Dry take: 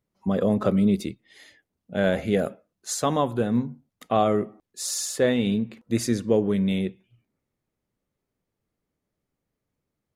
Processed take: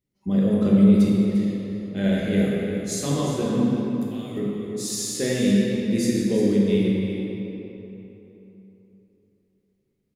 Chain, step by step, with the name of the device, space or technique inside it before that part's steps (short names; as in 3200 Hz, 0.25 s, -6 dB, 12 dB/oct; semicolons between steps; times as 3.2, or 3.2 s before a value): band shelf 930 Hz -9.5 dB; 3.7–4.37 pre-emphasis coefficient 0.97; cave (echo 0.35 s -11.5 dB; reverb RT60 3.5 s, pre-delay 3 ms, DRR -5 dB); gain -3.5 dB